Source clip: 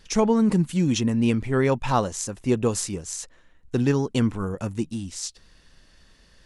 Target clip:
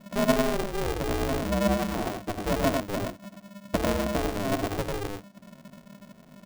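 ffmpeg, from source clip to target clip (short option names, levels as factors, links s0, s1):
-filter_complex "[0:a]lowshelf=f=80:g=9.5,acompressor=threshold=0.0562:ratio=6,lowpass=f=470:t=q:w=4.9,asplit=2[s0][s1];[s1]aecho=0:1:60|96|116:0.188|0.668|0.299[s2];[s0][s2]amix=inputs=2:normalize=0,aeval=exprs='val(0)*sgn(sin(2*PI*200*n/s))':c=same,volume=0.596"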